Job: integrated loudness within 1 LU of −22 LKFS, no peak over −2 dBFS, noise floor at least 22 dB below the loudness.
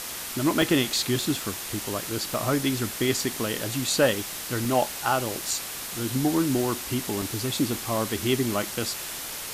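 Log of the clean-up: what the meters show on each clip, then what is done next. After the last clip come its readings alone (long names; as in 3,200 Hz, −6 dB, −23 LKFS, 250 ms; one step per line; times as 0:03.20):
number of dropouts 8; longest dropout 1.8 ms; background noise floor −35 dBFS; target noise floor −48 dBFS; integrated loudness −26.0 LKFS; sample peak −10.0 dBFS; target loudness −22.0 LKFS
→ repair the gap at 0:00.62/0:02.34/0:03.17/0:03.90/0:04.65/0:05.51/0:07.22/0:08.17, 1.8 ms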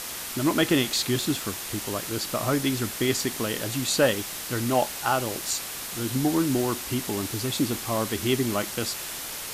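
number of dropouts 0; background noise floor −35 dBFS; target noise floor −48 dBFS
→ broadband denoise 13 dB, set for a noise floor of −35 dBFS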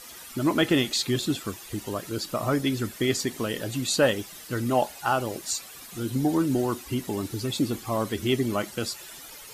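background noise floor −44 dBFS; target noise floor −49 dBFS
→ broadband denoise 6 dB, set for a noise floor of −44 dBFS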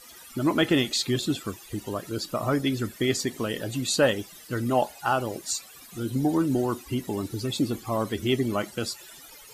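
background noise floor −48 dBFS; target noise floor −50 dBFS
→ broadband denoise 6 dB, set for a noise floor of −48 dBFS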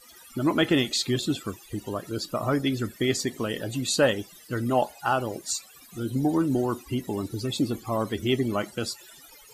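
background noise floor −51 dBFS; integrated loudness −27.5 LKFS; sample peak −10.0 dBFS; target loudness −22.0 LKFS
→ level +5.5 dB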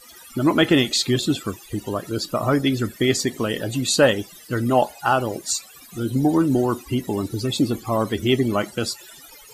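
integrated loudness −22.0 LKFS; sample peak −4.5 dBFS; background noise floor −46 dBFS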